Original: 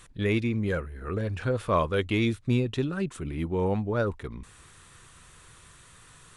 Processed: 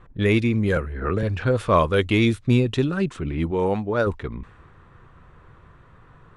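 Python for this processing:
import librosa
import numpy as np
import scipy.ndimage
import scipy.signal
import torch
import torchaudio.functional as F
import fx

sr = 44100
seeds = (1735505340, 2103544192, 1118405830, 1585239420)

y = fx.low_shelf(x, sr, hz=160.0, db=-10.5, at=(3.51, 4.07))
y = fx.env_lowpass(y, sr, base_hz=1000.0, full_db=-23.5)
y = fx.band_squash(y, sr, depth_pct=100, at=(0.76, 1.23))
y = y * librosa.db_to_amplitude(6.5)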